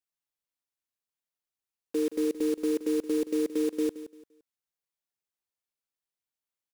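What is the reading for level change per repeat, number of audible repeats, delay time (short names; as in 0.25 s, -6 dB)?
-11.0 dB, 2, 0.172 s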